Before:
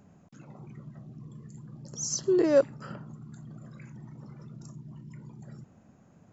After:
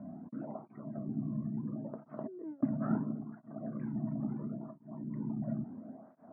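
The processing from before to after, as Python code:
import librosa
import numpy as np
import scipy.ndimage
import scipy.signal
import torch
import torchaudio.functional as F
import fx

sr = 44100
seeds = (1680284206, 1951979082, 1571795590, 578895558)

y = scipy.signal.sosfilt(scipy.signal.bessel(8, 940.0, 'lowpass', norm='mag', fs=sr, output='sos'), x)
y = fx.tilt_eq(y, sr, slope=1.5)
y = fx.over_compress(y, sr, threshold_db=-41.0, ratio=-1.0)
y = fx.small_body(y, sr, hz=(250.0, 640.0), ring_ms=45, db=15)
y = fx.flanger_cancel(y, sr, hz=0.73, depth_ms=2.5)
y = y * 10.0 ** (1.0 / 20.0)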